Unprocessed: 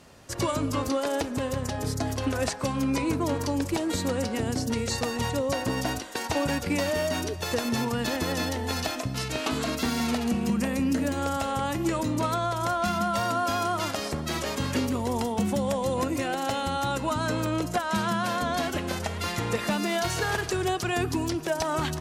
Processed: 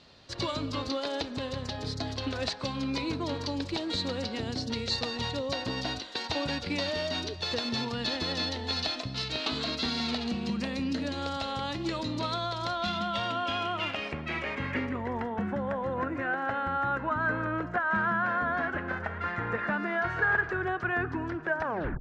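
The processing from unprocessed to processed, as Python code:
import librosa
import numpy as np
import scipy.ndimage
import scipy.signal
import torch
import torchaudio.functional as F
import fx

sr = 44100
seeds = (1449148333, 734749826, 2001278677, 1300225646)

y = fx.tape_stop_end(x, sr, length_s=0.38)
y = fx.filter_sweep_lowpass(y, sr, from_hz=4100.0, to_hz=1600.0, start_s=12.62, end_s=15.5, q=4.4)
y = y * librosa.db_to_amplitude(-6.0)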